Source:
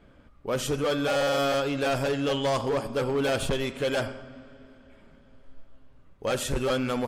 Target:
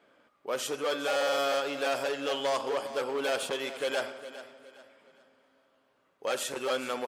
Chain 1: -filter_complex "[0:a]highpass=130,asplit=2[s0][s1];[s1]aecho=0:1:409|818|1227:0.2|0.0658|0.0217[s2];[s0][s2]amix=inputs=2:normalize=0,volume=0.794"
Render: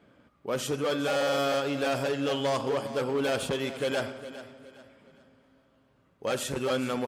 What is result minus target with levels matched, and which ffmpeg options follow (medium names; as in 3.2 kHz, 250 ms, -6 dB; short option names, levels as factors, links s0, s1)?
125 Hz band +16.0 dB
-filter_complex "[0:a]highpass=440,asplit=2[s0][s1];[s1]aecho=0:1:409|818|1227:0.2|0.0658|0.0217[s2];[s0][s2]amix=inputs=2:normalize=0,volume=0.794"